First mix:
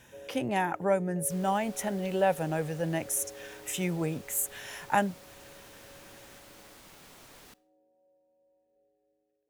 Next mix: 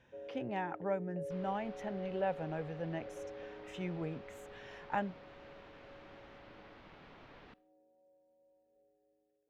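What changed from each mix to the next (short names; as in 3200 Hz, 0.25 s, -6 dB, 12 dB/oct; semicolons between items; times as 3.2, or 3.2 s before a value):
speech -8.5 dB; second sound: add LPF 3500 Hz 12 dB/oct; master: add air absorption 220 m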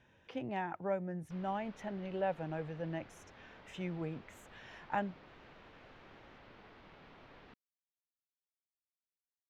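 first sound: muted; reverb: off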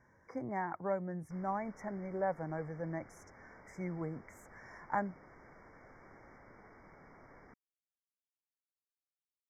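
speech: add bell 1100 Hz +8.5 dB 0.27 oct; master: add brick-wall FIR band-stop 2300–4900 Hz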